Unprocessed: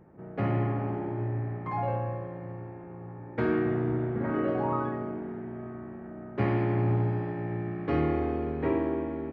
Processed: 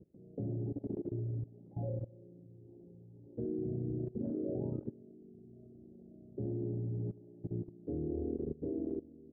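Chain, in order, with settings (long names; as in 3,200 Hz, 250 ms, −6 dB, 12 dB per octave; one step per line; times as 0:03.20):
inverse Chebyshev low-pass filter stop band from 990 Hz, stop band 40 dB
reverb reduction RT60 1.3 s
output level in coarse steps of 19 dB
level +1.5 dB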